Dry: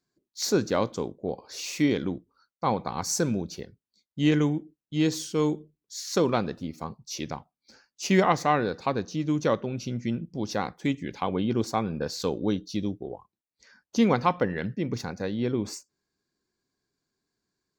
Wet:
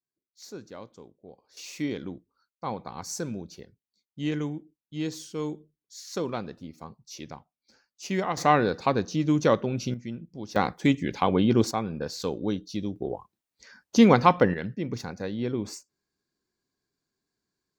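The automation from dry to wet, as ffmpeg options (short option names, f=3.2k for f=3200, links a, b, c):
-af "asetnsamples=n=441:p=0,asendcmd='1.57 volume volume -7dB;8.37 volume volume 3dB;9.94 volume volume -7dB;10.56 volume volume 5dB;11.71 volume volume -2dB;12.96 volume volume 5dB;14.54 volume volume -2dB',volume=-17.5dB"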